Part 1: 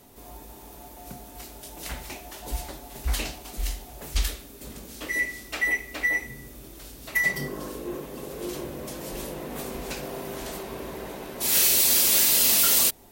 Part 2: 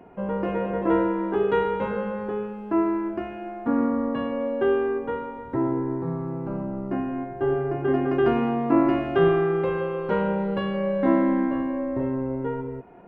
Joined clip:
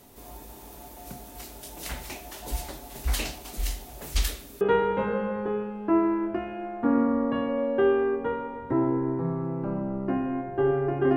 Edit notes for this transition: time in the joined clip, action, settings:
part 1
4.61 s: go over to part 2 from 1.44 s

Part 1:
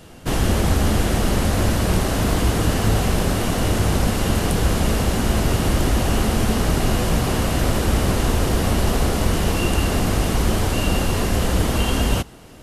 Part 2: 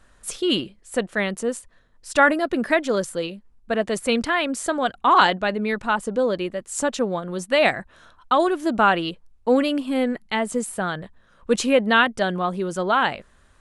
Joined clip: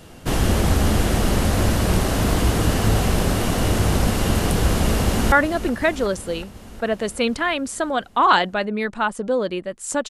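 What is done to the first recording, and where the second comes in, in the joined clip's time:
part 1
4.69–5.32 s: echo throw 370 ms, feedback 70%, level -13 dB
5.32 s: go over to part 2 from 2.20 s

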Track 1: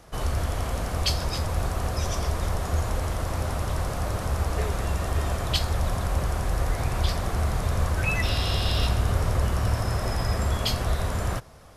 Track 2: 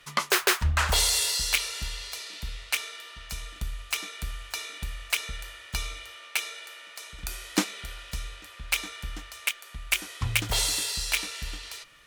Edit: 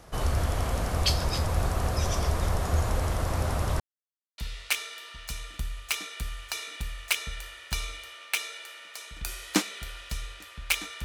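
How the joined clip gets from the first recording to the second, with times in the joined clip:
track 1
3.80–4.38 s: mute
4.38 s: go over to track 2 from 2.40 s

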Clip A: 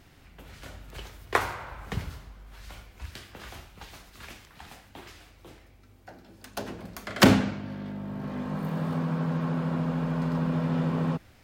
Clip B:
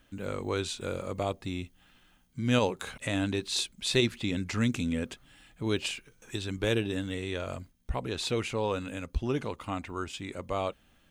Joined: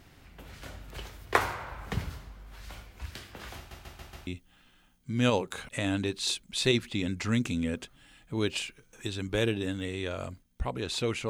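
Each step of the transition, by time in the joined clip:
clip A
3.57 s: stutter in place 0.14 s, 5 plays
4.27 s: go over to clip B from 1.56 s

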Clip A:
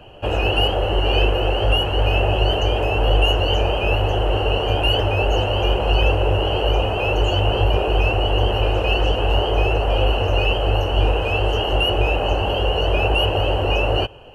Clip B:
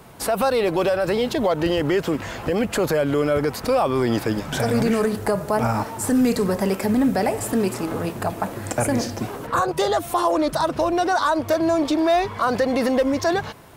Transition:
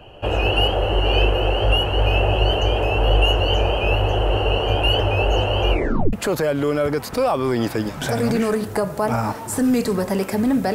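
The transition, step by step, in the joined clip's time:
clip A
5.70 s: tape stop 0.43 s
6.13 s: go over to clip B from 2.64 s

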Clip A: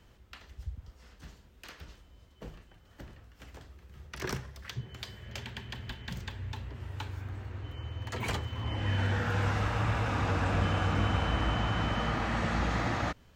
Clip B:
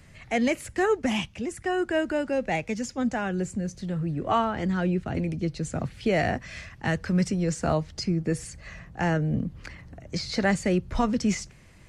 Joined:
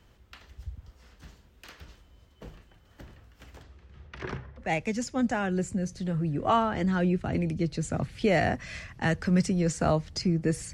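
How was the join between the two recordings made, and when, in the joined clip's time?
clip A
3.62–4.73 s: low-pass 7.8 kHz -> 1.3 kHz
4.65 s: go over to clip B from 2.47 s, crossfade 0.16 s

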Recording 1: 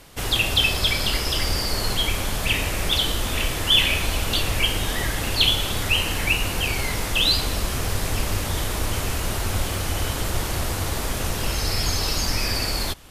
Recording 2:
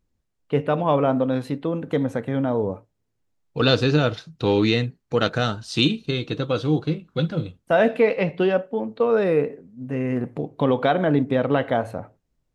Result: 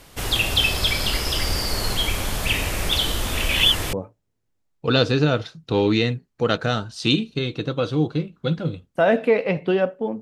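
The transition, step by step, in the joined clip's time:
recording 1
3.49–3.93 s: reverse
3.93 s: go over to recording 2 from 2.65 s

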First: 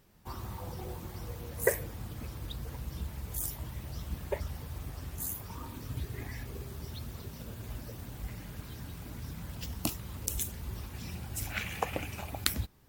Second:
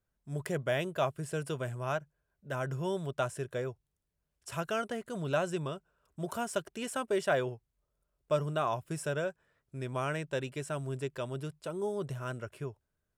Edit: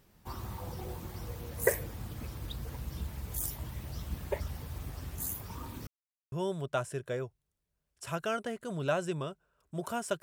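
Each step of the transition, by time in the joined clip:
first
5.87–6.32 s: mute
6.32 s: go over to second from 2.77 s

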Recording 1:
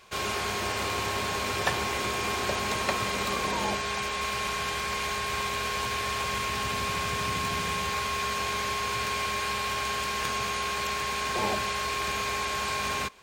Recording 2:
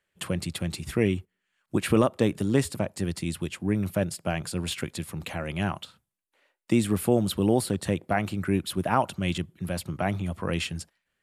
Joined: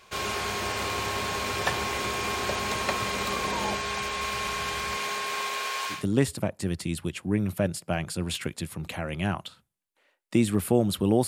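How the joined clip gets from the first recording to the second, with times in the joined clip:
recording 1
4.96–6.05 s: high-pass 170 Hz -> 920 Hz
5.97 s: go over to recording 2 from 2.34 s, crossfade 0.16 s

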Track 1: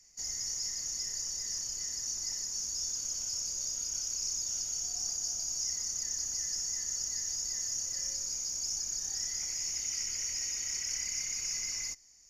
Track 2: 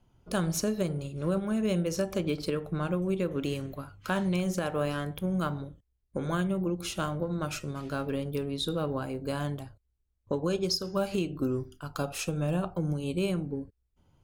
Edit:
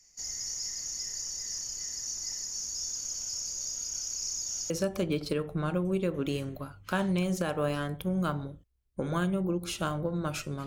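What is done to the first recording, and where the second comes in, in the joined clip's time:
track 1
4.70 s: go over to track 2 from 1.87 s

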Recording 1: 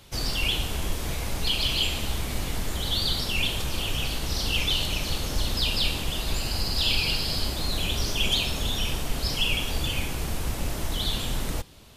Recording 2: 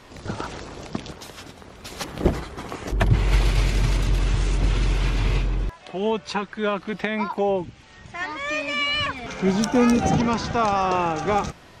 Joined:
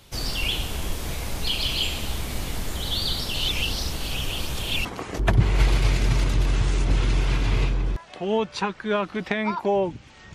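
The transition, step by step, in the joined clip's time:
recording 1
3.34–4.85 s: reverse
4.85 s: go over to recording 2 from 2.58 s

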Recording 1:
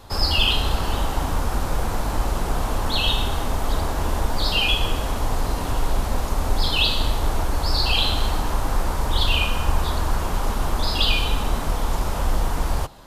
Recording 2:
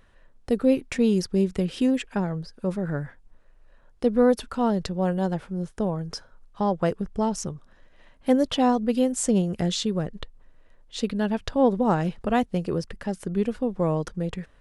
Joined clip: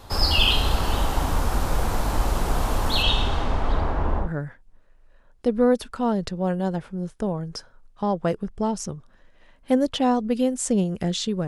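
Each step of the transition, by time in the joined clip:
recording 1
3.02–4.32 s: low-pass 7.4 kHz -> 1.1 kHz
4.25 s: go over to recording 2 from 2.83 s, crossfade 0.14 s

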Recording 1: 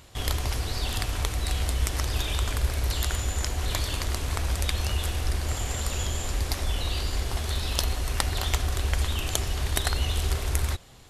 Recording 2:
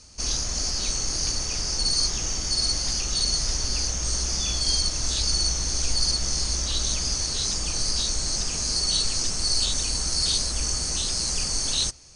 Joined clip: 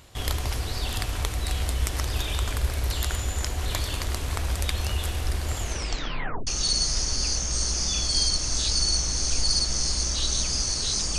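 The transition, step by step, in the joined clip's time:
recording 1
5.60 s: tape stop 0.87 s
6.47 s: go over to recording 2 from 2.99 s

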